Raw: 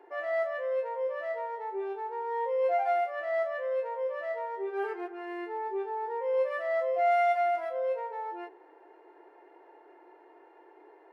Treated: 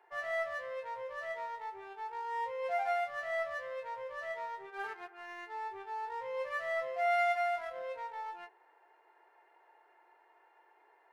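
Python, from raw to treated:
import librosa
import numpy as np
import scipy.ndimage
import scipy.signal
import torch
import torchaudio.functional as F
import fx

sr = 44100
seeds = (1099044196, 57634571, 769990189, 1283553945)

p1 = scipy.signal.sosfilt(scipy.signal.butter(2, 960.0, 'highpass', fs=sr, output='sos'), x)
p2 = np.sign(p1) * np.maximum(np.abs(p1) - 10.0 ** (-45.5 / 20.0), 0.0)
p3 = p1 + (p2 * librosa.db_to_amplitude(-4.0))
y = p3 * librosa.db_to_amplitude(-3.0)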